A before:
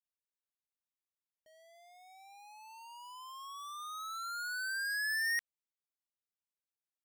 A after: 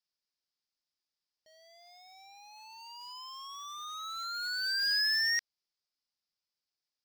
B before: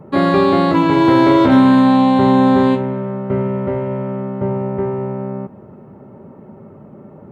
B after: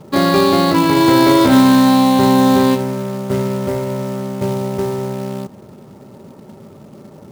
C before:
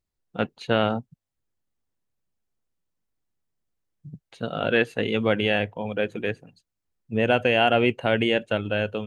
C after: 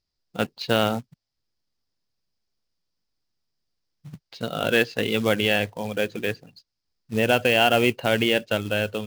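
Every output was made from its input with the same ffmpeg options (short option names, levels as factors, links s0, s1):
-af "lowpass=f=5000:t=q:w=6,acrusher=bits=4:mode=log:mix=0:aa=0.000001"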